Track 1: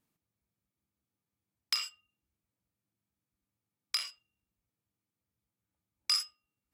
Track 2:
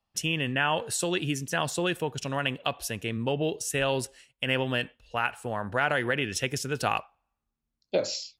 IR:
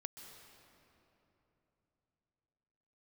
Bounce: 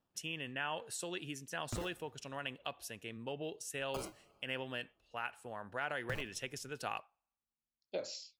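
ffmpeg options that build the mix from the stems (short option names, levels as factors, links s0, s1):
-filter_complex "[0:a]acrusher=samples=20:mix=1:aa=0.000001:lfo=1:lforange=12:lforate=0.53,acompressor=threshold=0.0316:ratio=6,volume=35.5,asoftclip=hard,volume=0.0282,volume=0.708,asplit=2[s0][s1];[s1]volume=0.211[s2];[1:a]lowshelf=f=180:g=-8.5,volume=0.237,asplit=2[s3][s4];[s4]apad=whole_len=297149[s5];[s0][s5]sidechaincompress=threshold=0.00891:ratio=8:attack=16:release=195[s6];[2:a]atrim=start_sample=2205[s7];[s2][s7]afir=irnorm=-1:irlink=0[s8];[s6][s3][s8]amix=inputs=3:normalize=0"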